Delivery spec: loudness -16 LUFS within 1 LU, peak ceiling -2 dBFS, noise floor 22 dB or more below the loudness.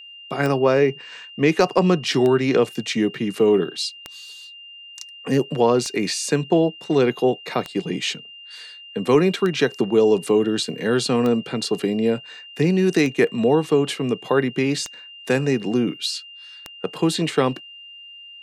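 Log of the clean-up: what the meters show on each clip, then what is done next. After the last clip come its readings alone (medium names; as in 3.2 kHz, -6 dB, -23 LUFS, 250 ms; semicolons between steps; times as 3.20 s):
clicks found 10; steady tone 2.8 kHz; tone level -39 dBFS; loudness -20.5 LUFS; peak level -5.0 dBFS; loudness target -16.0 LUFS
-> de-click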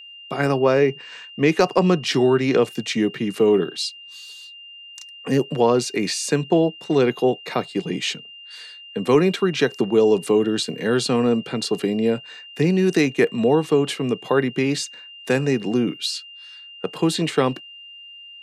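clicks found 0; steady tone 2.8 kHz; tone level -39 dBFS
-> band-stop 2.8 kHz, Q 30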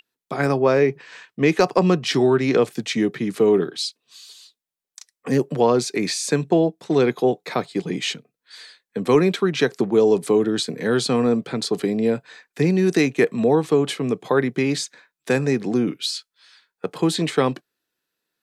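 steady tone not found; loudness -20.5 LUFS; peak level -5.0 dBFS; loudness target -16.0 LUFS
-> trim +4.5 dB; peak limiter -2 dBFS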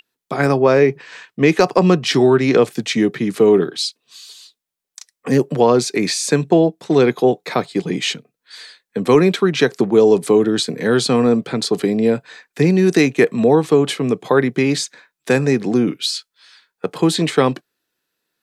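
loudness -16.5 LUFS; peak level -2.0 dBFS; noise floor -82 dBFS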